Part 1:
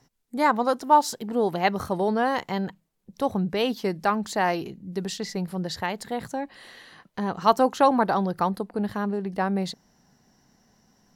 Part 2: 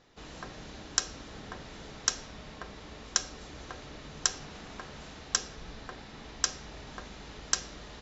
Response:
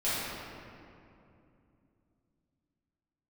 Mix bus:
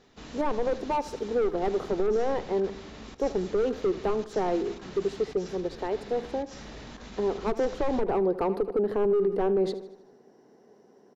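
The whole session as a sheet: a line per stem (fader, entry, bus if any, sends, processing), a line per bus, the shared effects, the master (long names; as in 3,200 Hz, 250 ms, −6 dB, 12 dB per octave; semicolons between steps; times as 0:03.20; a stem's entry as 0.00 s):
0:07.98 −8.5 dB → 0:08.48 0 dB, 0.00 s, no send, echo send −17 dB, high-pass with resonance 410 Hz, resonance Q 4.7; gain into a clipping stage and back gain 16.5 dB; spectral tilt −4 dB per octave
−3.0 dB, 0.00 s, send −22 dB, no echo send, parametric band 230 Hz +6.5 dB 0.59 octaves; compressor whose output falls as the input rises −44 dBFS, ratio −0.5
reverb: on, RT60 2.7 s, pre-delay 4 ms
echo: repeating echo 77 ms, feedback 51%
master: brickwall limiter −18 dBFS, peak gain reduction 10.5 dB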